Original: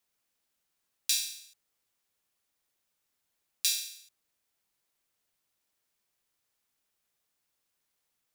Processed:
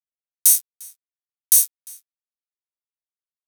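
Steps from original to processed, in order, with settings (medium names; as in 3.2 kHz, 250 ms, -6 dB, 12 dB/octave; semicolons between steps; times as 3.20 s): low-pass 3 kHz 12 dB/octave; fuzz box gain 50 dB, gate -56 dBFS; wide varispeed 2.4×; differentiator; echo from a far wall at 60 m, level -19 dB; trim +2 dB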